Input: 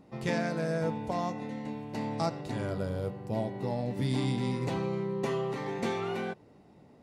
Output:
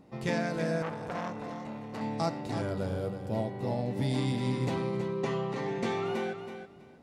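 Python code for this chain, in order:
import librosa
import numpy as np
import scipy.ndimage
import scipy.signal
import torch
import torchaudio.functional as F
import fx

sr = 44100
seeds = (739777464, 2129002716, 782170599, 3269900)

y = fx.lowpass(x, sr, hz=fx.line((4.75, 5700.0), (6.04, 9200.0)), slope=12, at=(4.75, 6.04), fade=0.02)
y = fx.echo_feedback(y, sr, ms=324, feedback_pct=20, wet_db=-9.0)
y = fx.transformer_sat(y, sr, knee_hz=1300.0, at=(0.82, 2.01))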